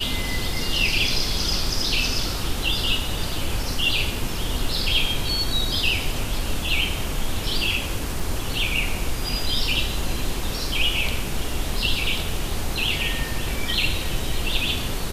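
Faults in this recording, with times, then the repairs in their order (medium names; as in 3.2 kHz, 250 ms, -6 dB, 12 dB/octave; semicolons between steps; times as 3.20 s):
8.20 s: dropout 3.7 ms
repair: interpolate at 8.20 s, 3.7 ms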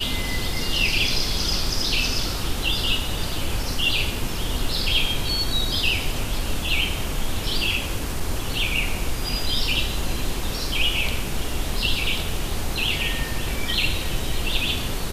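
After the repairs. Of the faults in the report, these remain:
nothing left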